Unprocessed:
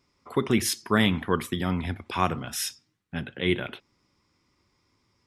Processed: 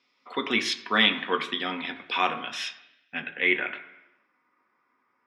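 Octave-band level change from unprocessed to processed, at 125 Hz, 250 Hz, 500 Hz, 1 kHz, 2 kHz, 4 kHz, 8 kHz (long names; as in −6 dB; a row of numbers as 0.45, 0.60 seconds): −17.0, −6.5, −3.5, +1.0, +6.5, +5.5, −10.0 decibels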